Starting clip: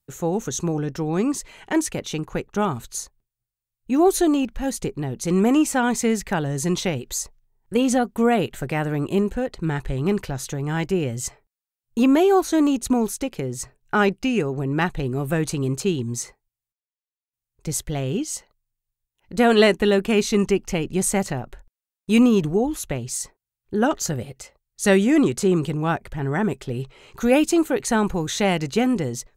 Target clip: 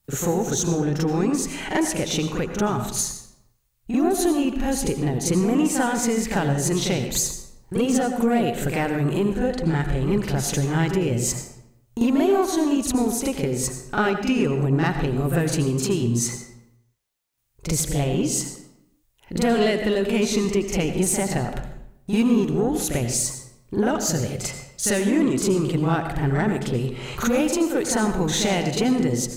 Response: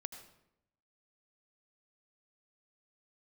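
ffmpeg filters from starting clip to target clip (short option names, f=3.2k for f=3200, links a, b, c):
-filter_complex "[0:a]acompressor=threshold=-37dB:ratio=3,asoftclip=type=tanh:threshold=-27dB,asplit=2[a][b];[1:a]atrim=start_sample=2205,adelay=43[c];[b][c]afir=irnorm=-1:irlink=0,volume=10dB[d];[a][d]amix=inputs=2:normalize=0,volume=7dB"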